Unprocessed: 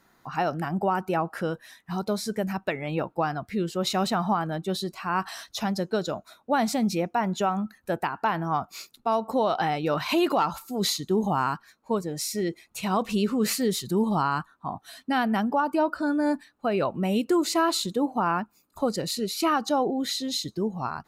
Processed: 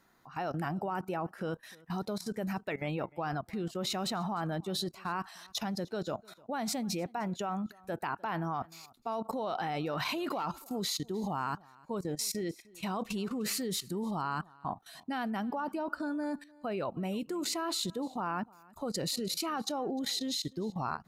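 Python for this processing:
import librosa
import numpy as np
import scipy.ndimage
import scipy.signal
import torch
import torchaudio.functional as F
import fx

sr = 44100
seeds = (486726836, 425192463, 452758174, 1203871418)

y = fx.level_steps(x, sr, step_db=17)
y = y + 10.0 ** (-24.0 / 20.0) * np.pad(y, (int(303 * sr / 1000.0), 0))[:len(y)]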